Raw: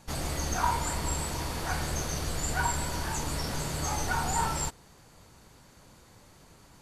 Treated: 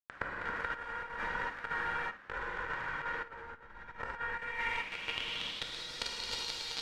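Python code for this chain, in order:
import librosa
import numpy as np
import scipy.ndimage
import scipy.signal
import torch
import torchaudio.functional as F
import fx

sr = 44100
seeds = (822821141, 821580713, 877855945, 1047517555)

y = np.sign(x) * np.sqrt(np.mean(np.square(x)))
y = fx.peak_eq(y, sr, hz=5100.0, db=-3.5, octaves=1.3)
y = fx.hum_notches(y, sr, base_hz=50, count=5)
y = fx.comb_fb(y, sr, f0_hz=470.0, decay_s=0.36, harmonics='all', damping=0.0, mix_pct=90)
y = fx.quant_companded(y, sr, bits=2)
y = fx.rev_gated(y, sr, seeds[0], gate_ms=430, shape='flat', drr_db=-4.5)
y = fx.over_compress(y, sr, threshold_db=-42.0, ratio=-0.5)
y = fx.room_flutter(y, sr, wall_m=9.3, rt60_s=0.23)
y = fx.filter_sweep_lowpass(y, sr, from_hz=1600.0, to_hz=4300.0, start_s=4.21, end_s=5.93, q=3.9)
y = fx.high_shelf(y, sr, hz=7800.0, db=-8.0, at=(2.11, 4.37))
y = F.gain(torch.from_numpy(y), 3.5).numpy()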